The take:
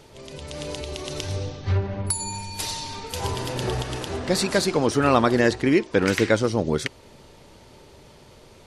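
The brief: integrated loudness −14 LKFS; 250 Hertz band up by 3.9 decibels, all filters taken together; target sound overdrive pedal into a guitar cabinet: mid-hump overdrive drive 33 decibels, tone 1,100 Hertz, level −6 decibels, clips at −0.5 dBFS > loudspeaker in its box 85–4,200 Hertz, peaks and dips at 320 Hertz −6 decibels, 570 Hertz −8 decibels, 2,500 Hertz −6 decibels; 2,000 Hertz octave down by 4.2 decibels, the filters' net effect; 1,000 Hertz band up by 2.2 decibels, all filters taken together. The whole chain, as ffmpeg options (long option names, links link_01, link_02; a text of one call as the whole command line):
ffmpeg -i in.wav -filter_complex "[0:a]equalizer=frequency=250:width_type=o:gain=7.5,equalizer=frequency=1000:width_type=o:gain=5,equalizer=frequency=2000:width_type=o:gain=-6,asplit=2[link_01][link_02];[link_02]highpass=frequency=720:poles=1,volume=33dB,asoftclip=type=tanh:threshold=-0.5dB[link_03];[link_01][link_03]amix=inputs=2:normalize=0,lowpass=frequency=1100:poles=1,volume=-6dB,highpass=85,equalizer=frequency=320:width_type=q:width=4:gain=-6,equalizer=frequency=570:width_type=q:width=4:gain=-8,equalizer=frequency=2500:width_type=q:width=4:gain=-6,lowpass=frequency=4200:width=0.5412,lowpass=frequency=4200:width=1.3066,volume=0.5dB" out.wav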